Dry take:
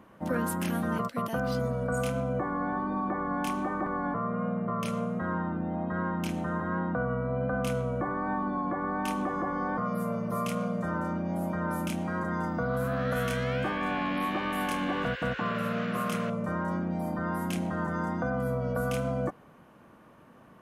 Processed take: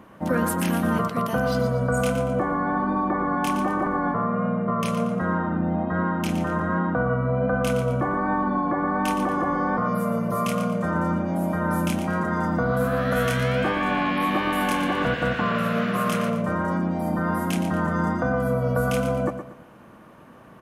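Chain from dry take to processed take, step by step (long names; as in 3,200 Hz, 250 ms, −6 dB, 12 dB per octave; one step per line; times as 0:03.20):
repeating echo 117 ms, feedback 35%, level −9.5 dB
level +6.5 dB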